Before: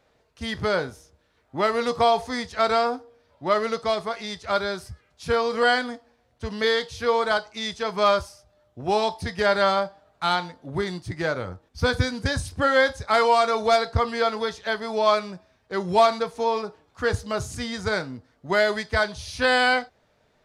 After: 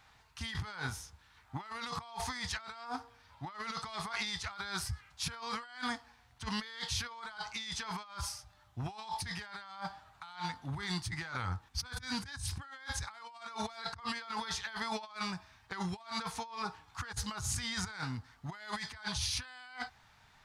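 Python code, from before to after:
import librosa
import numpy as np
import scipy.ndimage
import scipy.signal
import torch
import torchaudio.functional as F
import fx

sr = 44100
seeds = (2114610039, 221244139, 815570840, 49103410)

y = fx.curve_eq(x, sr, hz=(110.0, 570.0, 820.0), db=(0, -19, 2))
y = fx.over_compress(y, sr, threshold_db=-37.0, ratio=-1.0)
y = y * 10.0 ** (-5.5 / 20.0)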